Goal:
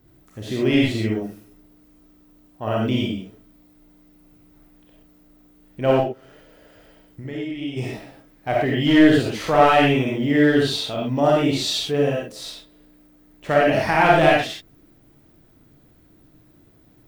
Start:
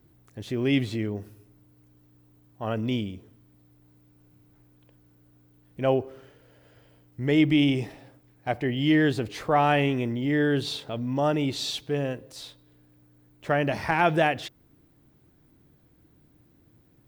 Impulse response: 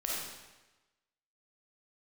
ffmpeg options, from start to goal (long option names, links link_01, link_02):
-filter_complex "[0:a]asplit=3[link_01][link_02][link_03];[link_01]afade=type=out:start_time=5.99:duration=0.02[link_04];[link_02]acompressor=threshold=-38dB:ratio=4,afade=type=in:start_time=5.99:duration=0.02,afade=type=out:start_time=7.76:duration=0.02[link_05];[link_03]afade=type=in:start_time=7.76:duration=0.02[link_06];[link_04][link_05][link_06]amix=inputs=3:normalize=0,aeval=exprs='clip(val(0),-1,0.1)':channel_layout=same[link_07];[1:a]atrim=start_sample=2205,afade=type=out:start_time=0.18:duration=0.01,atrim=end_sample=8379[link_08];[link_07][link_08]afir=irnorm=-1:irlink=0,volume=4dB"